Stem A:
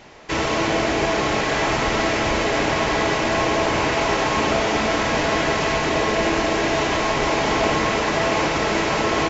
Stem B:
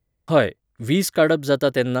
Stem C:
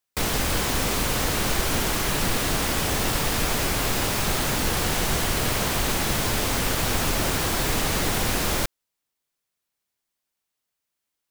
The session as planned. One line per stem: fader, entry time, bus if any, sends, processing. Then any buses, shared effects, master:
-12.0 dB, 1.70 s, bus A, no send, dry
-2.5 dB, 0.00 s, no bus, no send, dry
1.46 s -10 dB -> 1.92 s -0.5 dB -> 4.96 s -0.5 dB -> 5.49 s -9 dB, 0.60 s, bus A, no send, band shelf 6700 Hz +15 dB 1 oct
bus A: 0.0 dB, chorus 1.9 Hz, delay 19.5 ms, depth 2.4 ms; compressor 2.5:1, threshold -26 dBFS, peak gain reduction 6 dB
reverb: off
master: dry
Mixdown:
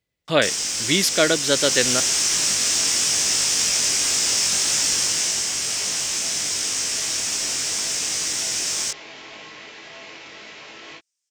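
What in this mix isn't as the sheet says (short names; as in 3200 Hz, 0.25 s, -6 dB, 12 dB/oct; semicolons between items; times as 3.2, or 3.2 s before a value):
stem A -12.0 dB -> -21.0 dB; stem C: entry 0.60 s -> 0.25 s; master: extra weighting filter D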